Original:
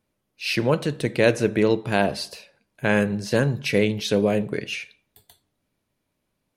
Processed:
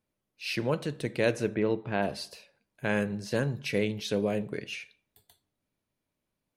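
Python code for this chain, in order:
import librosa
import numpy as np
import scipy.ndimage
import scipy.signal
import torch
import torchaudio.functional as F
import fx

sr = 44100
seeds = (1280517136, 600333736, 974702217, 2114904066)

y = fx.lowpass(x, sr, hz=2600.0, slope=12, at=(1.54, 2.01), fade=0.02)
y = y * librosa.db_to_amplitude(-8.0)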